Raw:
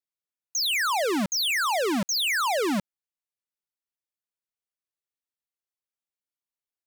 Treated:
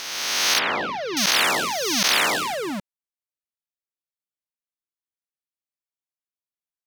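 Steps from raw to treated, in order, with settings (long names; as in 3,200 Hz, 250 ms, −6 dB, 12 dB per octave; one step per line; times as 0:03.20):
peak hold with a rise ahead of every peak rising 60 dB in 2.21 s
leveller curve on the samples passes 1
0:00.59–0:01.17: high-frequency loss of the air 310 metres
level −7.5 dB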